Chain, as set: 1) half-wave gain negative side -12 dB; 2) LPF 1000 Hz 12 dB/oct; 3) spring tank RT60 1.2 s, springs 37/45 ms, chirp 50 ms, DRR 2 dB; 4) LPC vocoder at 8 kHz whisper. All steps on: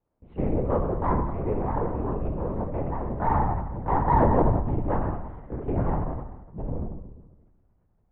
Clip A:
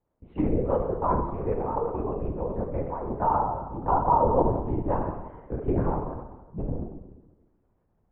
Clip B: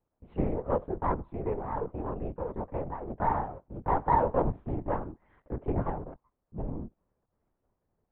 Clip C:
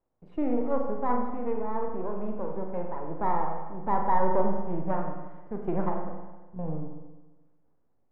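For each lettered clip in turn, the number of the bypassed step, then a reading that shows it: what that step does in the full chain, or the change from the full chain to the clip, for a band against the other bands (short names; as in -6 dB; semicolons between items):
1, distortion -4 dB; 3, 125 Hz band -5.0 dB; 4, 125 Hz band -9.0 dB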